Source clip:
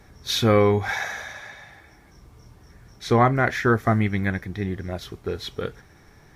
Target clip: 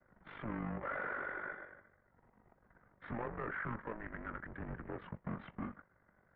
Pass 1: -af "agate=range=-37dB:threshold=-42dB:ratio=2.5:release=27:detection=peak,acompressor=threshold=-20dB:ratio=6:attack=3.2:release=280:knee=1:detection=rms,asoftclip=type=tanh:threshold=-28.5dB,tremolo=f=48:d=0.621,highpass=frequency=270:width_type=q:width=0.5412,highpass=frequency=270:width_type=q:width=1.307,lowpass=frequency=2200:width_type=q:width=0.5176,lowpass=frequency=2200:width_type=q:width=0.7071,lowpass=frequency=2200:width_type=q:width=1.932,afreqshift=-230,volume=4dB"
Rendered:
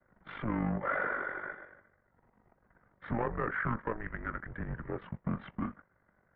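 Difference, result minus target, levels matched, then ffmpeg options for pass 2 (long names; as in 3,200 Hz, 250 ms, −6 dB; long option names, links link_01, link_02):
soft clipping: distortion −5 dB
-af "agate=range=-37dB:threshold=-42dB:ratio=2.5:release=27:detection=peak,acompressor=threshold=-20dB:ratio=6:attack=3.2:release=280:knee=1:detection=rms,asoftclip=type=tanh:threshold=-38.5dB,tremolo=f=48:d=0.621,highpass=frequency=270:width_type=q:width=0.5412,highpass=frequency=270:width_type=q:width=1.307,lowpass=frequency=2200:width_type=q:width=0.5176,lowpass=frequency=2200:width_type=q:width=0.7071,lowpass=frequency=2200:width_type=q:width=1.932,afreqshift=-230,volume=4dB"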